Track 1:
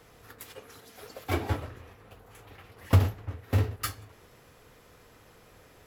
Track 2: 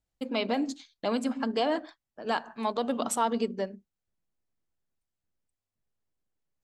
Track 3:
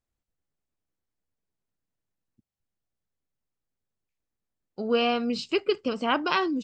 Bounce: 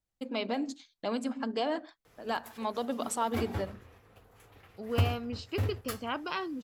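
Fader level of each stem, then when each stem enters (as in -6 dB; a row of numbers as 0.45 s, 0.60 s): -6.5 dB, -4.0 dB, -10.0 dB; 2.05 s, 0.00 s, 0.00 s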